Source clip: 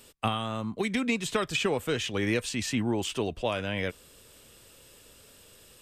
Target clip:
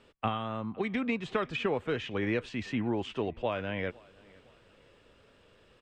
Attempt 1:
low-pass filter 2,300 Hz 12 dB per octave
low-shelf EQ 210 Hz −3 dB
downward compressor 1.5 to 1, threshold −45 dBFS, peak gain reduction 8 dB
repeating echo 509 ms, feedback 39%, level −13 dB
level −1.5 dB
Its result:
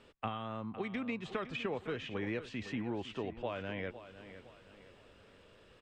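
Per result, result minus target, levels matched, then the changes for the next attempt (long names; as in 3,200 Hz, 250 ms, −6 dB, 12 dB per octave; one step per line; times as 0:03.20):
echo-to-direct +12 dB; downward compressor: peak gain reduction +8 dB
change: repeating echo 509 ms, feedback 39%, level −25 dB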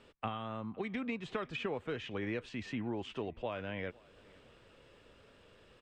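downward compressor: peak gain reduction +8 dB
remove: downward compressor 1.5 to 1, threshold −45 dBFS, peak gain reduction 8 dB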